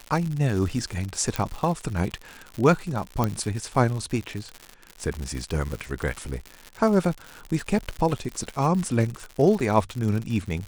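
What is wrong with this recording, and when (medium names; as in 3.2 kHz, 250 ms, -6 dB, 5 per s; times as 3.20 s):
crackle 130 per s -29 dBFS
1.36 s: pop -10 dBFS
3.24 s: pop -10 dBFS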